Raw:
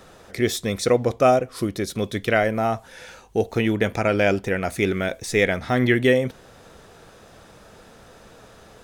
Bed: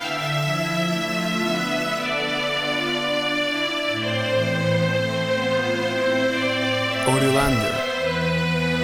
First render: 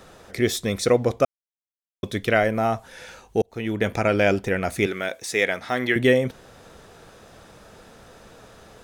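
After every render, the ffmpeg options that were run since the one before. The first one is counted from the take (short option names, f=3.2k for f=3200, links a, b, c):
-filter_complex "[0:a]asettb=1/sr,asplit=3[a][b][c];[a]atrim=end=4.864[d];[b]atrim=start=4.86:end=5.96,asetpts=PTS-STARTPTS,afade=t=in:d=0.004:c=qsin,afade=t=out:st=1.096:d=0.004:c=qsin,highpass=f=550:p=1[e];[c]atrim=start=5.956[f];[d][e]acrossfade=d=0.004:c1=hsin:c2=qsin[g];[g][f]acrossfade=d=0.004:c1=qsin:c2=hsin,asplit=4[h][i][j][k];[h]atrim=end=1.25,asetpts=PTS-STARTPTS,afade=t=out:st=1.246:d=0.004:c=hsin[l];[i]atrim=start=1.25:end=2.03,asetpts=PTS-STARTPTS,volume=0[m];[j]atrim=start=2.03:end=3.42,asetpts=PTS-STARTPTS,afade=t=in:d=0.004:c=hsin,afade=t=out:st=1.386:d=0.004:c=hsin[n];[k]atrim=start=3.42,asetpts=PTS-STARTPTS,afade=t=in:d=0.49[o];[l][m][n][o]concat=n=4:v=0:a=1"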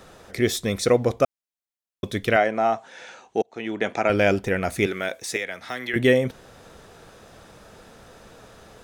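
-filter_complex "[0:a]asettb=1/sr,asplit=3[a][b][c];[a]atrim=end=2.364[d];[b]atrim=start=2.36:end=4.1,asetpts=PTS-STARTPTS,afade=t=in:d=0.004:c=qsin,afade=t=out:st=1.736:d=0.004:c=qsin,highpass=260,equalizer=f=490:t=q:w=4:g=-3,equalizer=f=740:t=q:w=4:g=4,equalizer=f=4.9k:t=q:w=4:g=-5,lowpass=f=7.4k:w=0.5412,lowpass=f=7.4k:w=1.3066[e];[c]atrim=start=4.096[f];[d][e]acrossfade=d=0.004:c1=hsin:c2=qsin[g];[g][f]acrossfade=d=0.004:c1=qsin:c2=hsin,asettb=1/sr,asplit=3[h][i][j];[h]atrim=end=5.364[k];[i]atrim=start=5.36:end=5.94,asetpts=PTS-STARTPTS,afade=t=in:d=0.004:c=qsin,afade=t=out:st=0.576:d=0.004:c=qsin,acrossover=split=160|700|1500[l][m][n][o];[l]acompressor=threshold=-55dB:ratio=3[p];[m]acompressor=threshold=-39dB:ratio=3[q];[n]acompressor=threshold=-41dB:ratio=3[r];[o]acompressor=threshold=-31dB:ratio=3[s];[p][q][r][s]amix=inputs=4:normalize=0[t];[j]atrim=start=5.936[u];[k][t]acrossfade=d=0.004:c1=hsin:c2=qsin[v];[v][u]acrossfade=d=0.004:c1=qsin:c2=hsin"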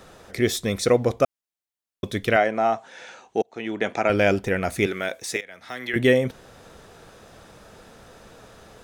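-filter_complex "[0:a]asplit=2[a][b];[a]atrim=end=5.41,asetpts=PTS-STARTPTS,afade=t=out:st=5.406:d=0.004:c=hsin:silence=0.16788[c];[b]atrim=start=5.41,asetpts=PTS-STARTPTS,afade=t=in:d=0.49:silence=0.16788[d];[c][d]concat=n=2:v=0:a=1"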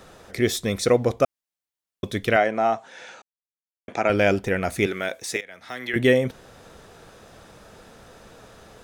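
-filter_complex "[0:a]asplit=3[a][b][c];[a]atrim=end=3.22,asetpts=PTS-STARTPTS,afade=t=out:st=3.216:d=0.004:c=hsin[d];[b]atrim=start=3.22:end=3.88,asetpts=PTS-STARTPTS,volume=0[e];[c]atrim=start=3.88,asetpts=PTS-STARTPTS,afade=t=in:d=0.004:c=hsin[f];[d][e][f]concat=n=3:v=0:a=1"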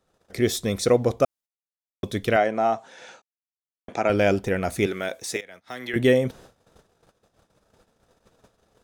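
-af "equalizer=f=2k:w=1:g=-4,agate=range=-24dB:threshold=-45dB:ratio=16:detection=peak"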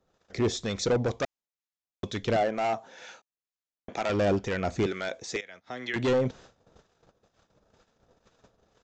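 -filter_complex "[0:a]aresample=16000,asoftclip=type=hard:threshold=-20dB,aresample=44100,acrossover=split=1000[a][b];[a]aeval=exprs='val(0)*(1-0.5/2+0.5/2*cos(2*PI*2.1*n/s))':c=same[c];[b]aeval=exprs='val(0)*(1-0.5/2-0.5/2*cos(2*PI*2.1*n/s))':c=same[d];[c][d]amix=inputs=2:normalize=0"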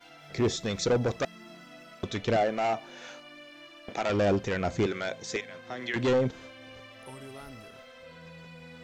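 -filter_complex "[1:a]volume=-26dB[a];[0:a][a]amix=inputs=2:normalize=0"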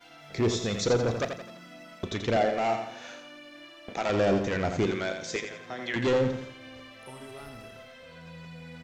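-filter_complex "[0:a]asplit=2[a][b];[b]adelay=35,volume=-14dB[c];[a][c]amix=inputs=2:normalize=0,aecho=1:1:85|170|255|340|425:0.447|0.192|0.0826|0.0355|0.0153"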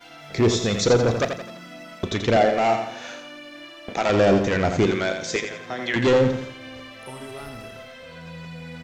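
-af "volume=7dB"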